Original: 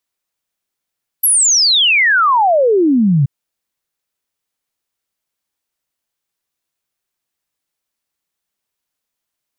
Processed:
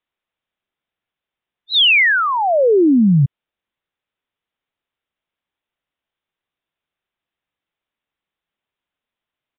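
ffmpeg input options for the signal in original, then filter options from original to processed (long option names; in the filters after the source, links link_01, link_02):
-f lavfi -i "aevalsrc='0.376*clip(min(t,2.03-t)/0.01,0,1)*sin(2*PI*12000*2.03/log(130/12000)*(exp(log(130/12000)*t/2.03)-1))':duration=2.03:sample_rate=44100"
-filter_complex "[0:a]acrossover=split=670|1600[link_01][link_02][link_03];[link_02]acompressor=threshold=-26dB:ratio=6[link_04];[link_01][link_04][link_03]amix=inputs=3:normalize=0,aresample=8000,aresample=44100"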